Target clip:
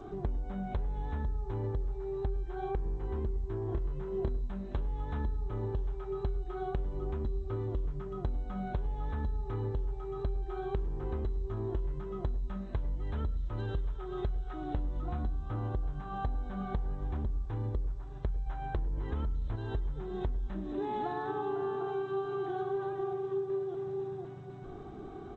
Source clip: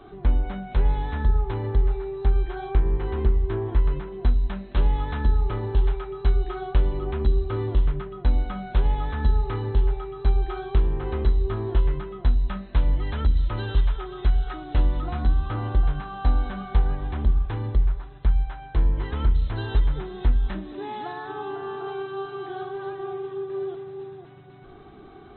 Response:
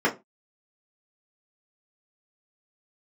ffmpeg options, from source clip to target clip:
-filter_complex "[0:a]equalizer=f=2.9k:w=0.53:g=-10.5,asettb=1/sr,asplit=3[a][b][c];[a]atrim=end=18.464[d];[b]atrim=start=18.46:end=19.56,asetpts=PTS-STARTPTS,afade=t=in:d=0.004:c=qsin,afade=t=out:st=1.096:d=0.004:c=qsin,acontrast=72[e];[c]atrim=start=19.556[f];[d][e]acrossfade=d=0.004:c1=hsin:c2=qsin[g];[g][f]acrossfade=d=0.004:c1=qsin:c2=hsin,alimiter=limit=-14.5dB:level=0:latency=1:release=68,acompressor=threshold=-33dB:ratio=12,asettb=1/sr,asplit=3[h][i][j];[h]atrim=end=3.654[k];[i]atrim=start=3.65:end=4.5,asetpts=PTS-STARTPTS,afade=t=in:d=0.004:c=qsin,afade=t=out:st=0.846:d=0.004:c=qsin,asplit=2[l][m];[m]adelay=29,volume=-6.5dB[n];[l][n]amix=inputs=2:normalize=0,atrim=end_sample=37485[o];[j]atrim=start=4.496[p];[k][o]acrossfade=d=0.004:c1=hsin:c2=qsin[q];[q][p]acrossfade=d=0.004:c1=qsin:c2=hsin,asplit=2[r][s];[s]adelay=347,lowpass=f=1.3k:p=1,volume=-23.5dB,asplit=2[t][u];[u]adelay=347,lowpass=f=1.3k:p=1,volume=0.36[v];[r][t][v]amix=inputs=3:normalize=0,asplit=2[w][x];[1:a]atrim=start_sample=2205,adelay=96[y];[x][y]afir=irnorm=-1:irlink=0,volume=-33dB[z];[w][z]amix=inputs=2:normalize=0,volume=2.5dB" -ar 16000 -c:a g722

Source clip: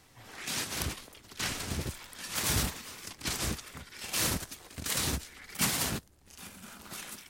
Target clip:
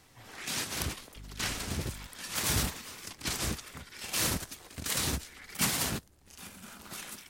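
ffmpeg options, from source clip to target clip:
-filter_complex "[0:a]asettb=1/sr,asplit=3[a][b][c];[a]atrim=end=1.164[d];[b]atrim=start=1.16:end=2.07,asetpts=PTS-STARTPTS,afade=t=in:d=0.004:c=qsin,afade=t=out:st=0.906:d=0.004:c=qsin,aeval=exprs='val(0)+0.00562*(sin(2*PI*50*n/s)+sin(2*PI*2*50*n/s)/2+sin(2*PI*3*50*n/s)/3+sin(2*PI*4*50*n/s)/4+sin(2*PI*5*50*n/s)/5)':c=same[e];[c]atrim=start=2.066[f];[d][e]acrossfade=d=0.004:c1=hsin:c2=qsin[g];[g][f]acrossfade=d=0.004:c1=qsin:c2=hsin"

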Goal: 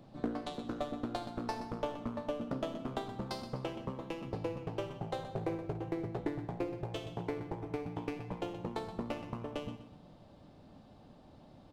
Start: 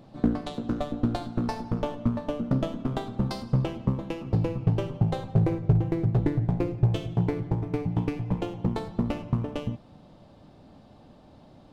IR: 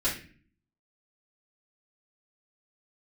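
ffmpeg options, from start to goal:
-filter_complex "[0:a]acrossover=split=320[a][b];[a]acompressor=threshold=-38dB:ratio=6[c];[c][b]amix=inputs=2:normalize=0,aecho=1:1:124|248|372|496:0.282|0.093|0.0307|0.0101,volume=-5dB"

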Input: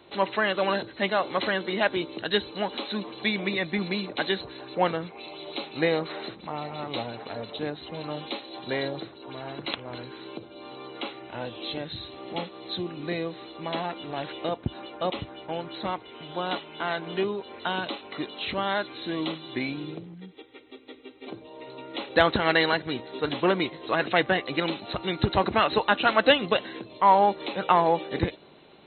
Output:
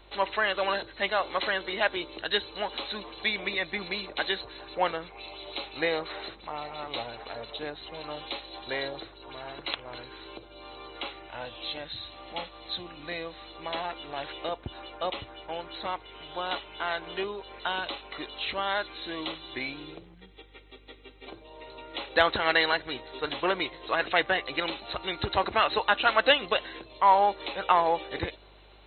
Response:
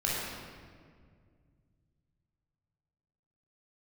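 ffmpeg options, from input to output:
-filter_complex "[0:a]asettb=1/sr,asplit=3[a][b][c];[a]atrim=end=11.284[d];[b]atrim=start=11.28:end=13.5,asetpts=PTS-STARTPTS,afade=t=in:d=0.004:c=qsin,afade=t=out:st=2.216:d=0.004:c=qsin,equalizer=f=390:w=5.8:g=-11.5[e];[c]atrim=start=13.496[f];[d][e]acrossfade=d=0.004:c1=hsin:c2=qsin[g];[g][f]acrossfade=d=0.004:c1=qsin:c2=hsin,aeval=exprs='val(0)+0.00251*(sin(2*PI*50*n/s)+sin(2*PI*2*50*n/s)/2+sin(2*PI*3*50*n/s)/3+sin(2*PI*4*50*n/s)/4+sin(2*PI*5*50*n/s)/5)':c=same,equalizer=f=180:w=0.64:g=-13"

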